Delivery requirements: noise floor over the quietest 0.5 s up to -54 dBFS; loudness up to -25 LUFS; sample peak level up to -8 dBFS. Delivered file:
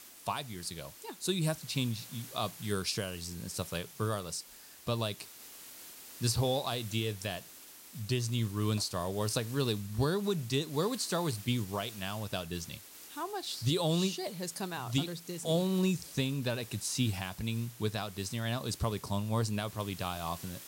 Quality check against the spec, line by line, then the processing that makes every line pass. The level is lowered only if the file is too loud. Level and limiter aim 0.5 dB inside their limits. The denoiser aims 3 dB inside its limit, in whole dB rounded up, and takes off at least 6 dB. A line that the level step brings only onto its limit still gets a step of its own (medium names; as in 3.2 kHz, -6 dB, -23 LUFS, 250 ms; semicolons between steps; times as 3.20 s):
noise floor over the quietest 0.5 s -52 dBFS: fail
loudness -34.5 LUFS: pass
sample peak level -17.0 dBFS: pass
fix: noise reduction 6 dB, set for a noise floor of -52 dBFS